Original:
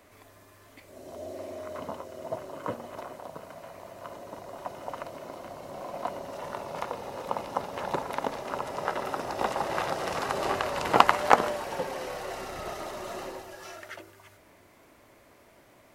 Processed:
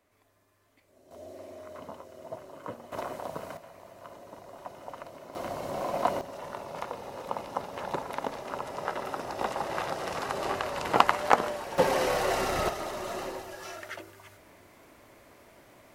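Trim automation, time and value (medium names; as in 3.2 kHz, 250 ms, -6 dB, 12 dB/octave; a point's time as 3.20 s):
-14 dB
from 1.11 s -6 dB
from 2.92 s +4.5 dB
from 3.57 s -5 dB
from 5.35 s +6.5 dB
from 6.21 s -2.5 dB
from 11.78 s +9 dB
from 12.69 s +2 dB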